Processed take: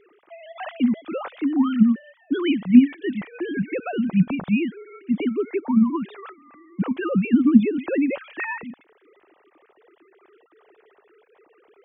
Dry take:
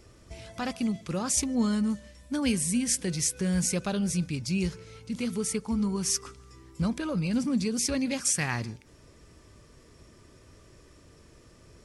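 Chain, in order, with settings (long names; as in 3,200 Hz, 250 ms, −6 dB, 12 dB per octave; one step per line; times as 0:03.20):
three sine waves on the formant tracks
level +7.5 dB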